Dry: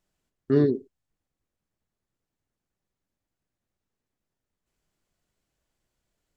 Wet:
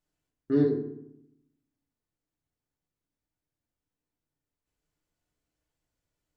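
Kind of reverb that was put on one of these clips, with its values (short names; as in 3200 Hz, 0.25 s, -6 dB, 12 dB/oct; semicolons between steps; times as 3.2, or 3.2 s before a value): FDN reverb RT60 0.76 s, low-frequency decay 1.4×, high-frequency decay 0.6×, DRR 1.5 dB; gain -7.5 dB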